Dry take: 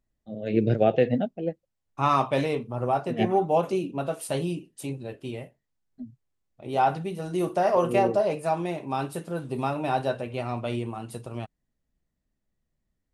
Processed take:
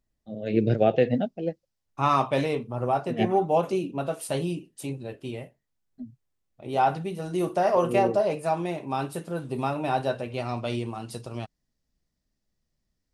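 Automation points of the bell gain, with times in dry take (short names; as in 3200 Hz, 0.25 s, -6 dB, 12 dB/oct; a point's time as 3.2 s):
bell 5100 Hz
1.11 s +3.5 dB
1.46 s +13 dB
2.01 s +1 dB
10.02 s +1 dB
10.58 s +10.5 dB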